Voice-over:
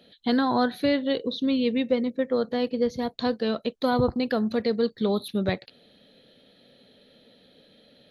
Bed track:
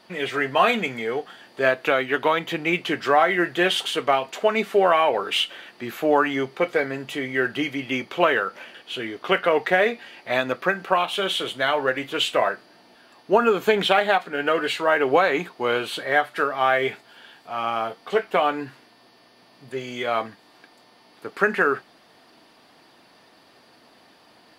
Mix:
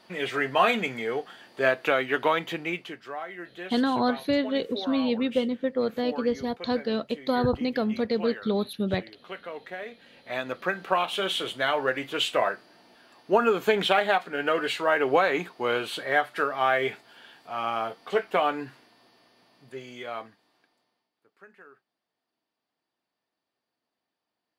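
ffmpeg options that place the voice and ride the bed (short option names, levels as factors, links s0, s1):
-filter_complex "[0:a]adelay=3450,volume=0.841[s0];[1:a]volume=3.98,afade=t=out:st=2.38:d=0.61:silence=0.16788,afade=t=in:st=9.86:d=1.16:silence=0.177828,afade=t=out:st=18.48:d=2.63:silence=0.0398107[s1];[s0][s1]amix=inputs=2:normalize=0"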